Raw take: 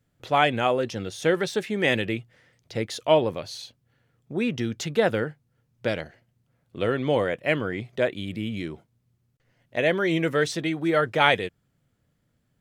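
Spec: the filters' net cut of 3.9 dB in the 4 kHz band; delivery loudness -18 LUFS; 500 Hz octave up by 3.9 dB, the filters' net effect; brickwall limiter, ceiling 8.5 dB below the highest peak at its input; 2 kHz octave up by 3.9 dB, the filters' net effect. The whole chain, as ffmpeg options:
-af "equalizer=f=500:t=o:g=4.5,equalizer=f=2000:t=o:g=6.5,equalizer=f=4000:t=o:g=-8.5,volume=2,alimiter=limit=0.631:level=0:latency=1"

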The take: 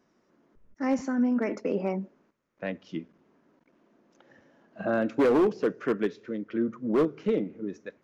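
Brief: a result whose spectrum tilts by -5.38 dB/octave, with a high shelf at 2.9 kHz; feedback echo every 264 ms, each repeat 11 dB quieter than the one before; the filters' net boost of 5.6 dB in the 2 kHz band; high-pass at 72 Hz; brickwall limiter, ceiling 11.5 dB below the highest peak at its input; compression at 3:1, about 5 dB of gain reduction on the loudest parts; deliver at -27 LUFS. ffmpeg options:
-af "highpass=72,equalizer=f=2000:t=o:g=4.5,highshelf=f=2900:g=8,acompressor=threshold=0.0562:ratio=3,alimiter=level_in=1.58:limit=0.0631:level=0:latency=1,volume=0.631,aecho=1:1:264|528|792:0.282|0.0789|0.0221,volume=3.35"

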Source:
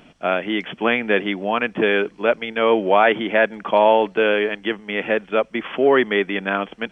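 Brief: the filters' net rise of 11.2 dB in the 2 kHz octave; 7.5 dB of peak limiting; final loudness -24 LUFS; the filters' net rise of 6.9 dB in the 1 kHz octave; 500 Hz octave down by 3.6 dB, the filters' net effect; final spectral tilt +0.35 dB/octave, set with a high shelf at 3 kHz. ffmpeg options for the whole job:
-af "equalizer=f=500:t=o:g=-8,equalizer=f=1000:t=o:g=8,equalizer=f=2000:t=o:g=9,highshelf=f=3000:g=8,volume=0.355,alimiter=limit=0.299:level=0:latency=1"

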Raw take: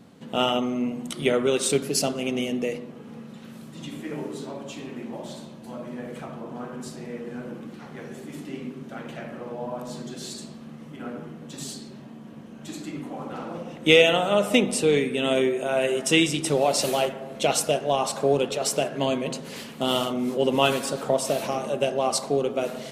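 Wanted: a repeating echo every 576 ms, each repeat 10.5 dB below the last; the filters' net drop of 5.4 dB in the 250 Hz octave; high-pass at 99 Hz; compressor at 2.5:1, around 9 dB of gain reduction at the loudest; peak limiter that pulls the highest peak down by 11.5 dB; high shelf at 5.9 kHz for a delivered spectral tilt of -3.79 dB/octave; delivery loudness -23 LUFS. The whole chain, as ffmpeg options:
-af "highpass=99,equalizer=f=250:t=o:g=-6.5,highshelf=f=5900:g=-6.5,acompressor=threshold=0.0501:ratio=2.5,alimiter=limit=0.0708:level=0:latency=1,aecho=1:1:576|1152|1728:0.299|0.0896|0.0269,volume=3.76"

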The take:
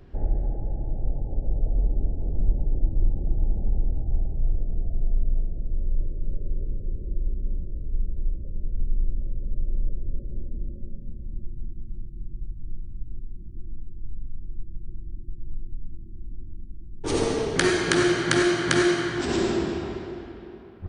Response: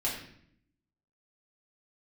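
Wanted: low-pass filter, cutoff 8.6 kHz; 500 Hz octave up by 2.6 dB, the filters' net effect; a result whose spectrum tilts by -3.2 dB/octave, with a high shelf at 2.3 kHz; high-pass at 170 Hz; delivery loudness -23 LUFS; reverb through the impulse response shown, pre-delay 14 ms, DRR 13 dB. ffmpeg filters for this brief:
-filter_complex "[0:a]highpass=170,lowpass=8600,equalizer=f=500:t=o:g=4,highshelf=f=2300:g=7,asplit=2[s0][s1];[1:a]atrim=start_sample=2205,adelay=14[s2];[s1][s2]afir=irnorm=-1:irlink=0,volume=0.112[s3];[s0][s3]amix=inputs=2:normalize=0,volume=0.794"

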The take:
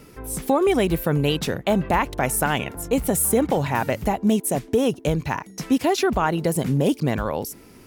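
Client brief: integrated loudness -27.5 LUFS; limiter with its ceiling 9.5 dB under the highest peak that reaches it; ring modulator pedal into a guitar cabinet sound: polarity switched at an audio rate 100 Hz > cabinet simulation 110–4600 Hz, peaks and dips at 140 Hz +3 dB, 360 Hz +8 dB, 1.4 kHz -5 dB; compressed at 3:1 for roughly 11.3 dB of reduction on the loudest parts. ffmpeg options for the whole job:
-af "acompressor=threshold=0.0282:ratio=3,alimiter=level_in=1.33:limit=0.0631:level=0:latency=1,volume=0.75,aeval=exprs='val(0)*sgn(sin(2*PI*100*n/s))':c=same,highpass=110,equalizer=f=140:t=q:w=4:g=3,equalizer=f=360:t=q:w=4:g=8,equalizer=f=1400:t=q:w=4:g=-5,lowpass=f=4600:w=0.5412,lowpass=f=4600:w=1.3066,volume=2.37"

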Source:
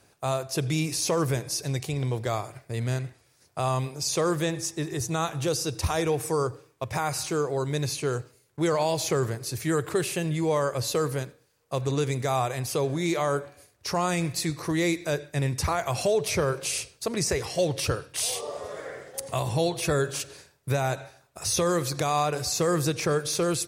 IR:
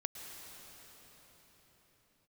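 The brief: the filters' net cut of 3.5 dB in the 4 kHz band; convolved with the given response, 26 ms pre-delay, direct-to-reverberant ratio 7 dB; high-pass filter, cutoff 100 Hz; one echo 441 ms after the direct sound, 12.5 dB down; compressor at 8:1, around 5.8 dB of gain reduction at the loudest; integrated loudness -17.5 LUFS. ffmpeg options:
-filter_complex "[0:a]highpass=100,equalizer=f=4000:t=o:g=-4.5,acompressor=threshold=0.0501:ratio=8,aecho=1:1:441:0.237,asplit=2[s0][s1];[1:a]atrim=start_sample=2205,adelay=26[s2];[s1][s2]afir=irnorm=-1:irlink=0,volume=0.473[s3];[s0][s3]amix=inputs=2:normalize=0,volume=4.73"

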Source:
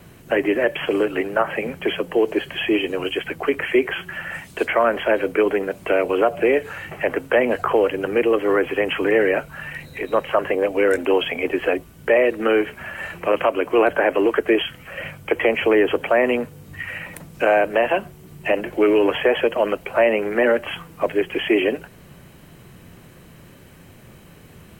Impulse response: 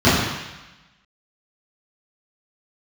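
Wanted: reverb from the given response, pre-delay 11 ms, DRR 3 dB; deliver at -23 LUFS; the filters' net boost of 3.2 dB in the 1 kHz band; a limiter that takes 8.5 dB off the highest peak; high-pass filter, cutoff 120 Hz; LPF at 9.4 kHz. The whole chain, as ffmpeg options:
-filter_complex "[0:a]highpass=120,lowpass=9400,equalizer=f=1000:t=o:g=4.5,alimiter=limit=0.266:level=0:latency=1,asplit=2[s0][s1];[1:a]atrim=start_sample=2205,adelay=11[s2];[s1][s2]afir=irnorm=-1:irlink=0,volume=0.0376[s3];[s0][s3]amix=inputs=2:normalize=0,volume=0.708"

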